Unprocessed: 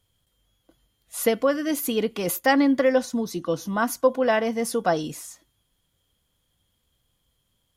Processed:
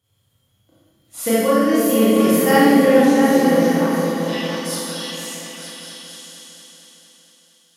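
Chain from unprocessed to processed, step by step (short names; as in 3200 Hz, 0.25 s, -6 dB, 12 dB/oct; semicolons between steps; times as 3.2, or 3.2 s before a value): 3.56–3.98 compressor, threshold -34 dBFS, peak gain reduction 14.5 dB; high-pass sweep 110 Hz -> 3500 Hz, 3.4–4.07; repeats that get brighter 0.229 s, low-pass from 200 Hz, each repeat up 2 oct, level 0 dB; Schroeder reverb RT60 1.4 s, combs from 28 ms, DRR -9.5 dB; gain -4.5 dB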